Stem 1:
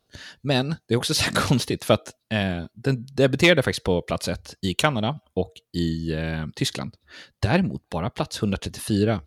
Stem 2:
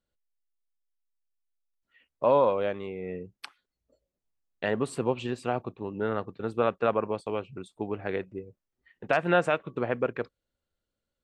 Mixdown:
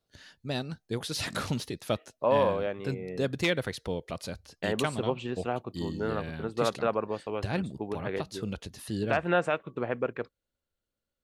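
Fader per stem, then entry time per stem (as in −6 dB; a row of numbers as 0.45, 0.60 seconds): −11.0, −2.5 decibels; 0.00, 0.00 seconds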